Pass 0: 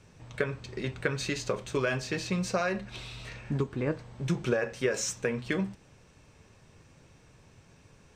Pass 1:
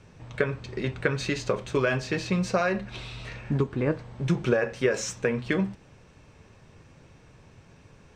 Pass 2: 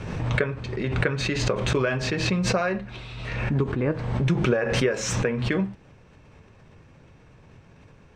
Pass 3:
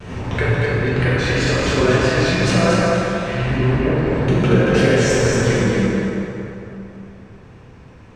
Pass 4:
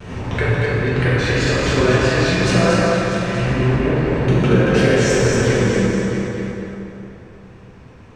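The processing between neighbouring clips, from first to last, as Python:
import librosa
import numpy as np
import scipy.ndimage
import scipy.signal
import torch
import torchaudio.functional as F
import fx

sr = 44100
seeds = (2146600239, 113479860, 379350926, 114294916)

y1 = fx.lowpass(x, sr, hz=3800.0, slope=6)
y1 = F.gain(torch.from_numpy(y1), 4.5).numpy()
y2 = fx.bass_treble(y1, sr, bass_db=1, treble_db=-7)
y2 = fx.pre_swell(y2, sr, db_per_s=37.0)
y3 = fx.wow_flutter(y2, sr, seeds[0], rate_hz=2.1, depth_cents=110.0)
y3 = fx.echo_feedback(y3, sr, ms=231, feedback_pct=33, wet_db=-4)
y3 = fx.rev_plate(y3, sr, seeds[1], rt60_s=3.1, hf_ratio=0.55, predelay_ms=0, drr_db=-8.0)
y3 = F.gain(torch.from_numpy(y3), -2.0).numpy()
y4 = y3 + 10.0 ** (-11.0 / 20.0) * np.pad(y3, (int(645 * sr / 1000.0), 0))[:len(y3)]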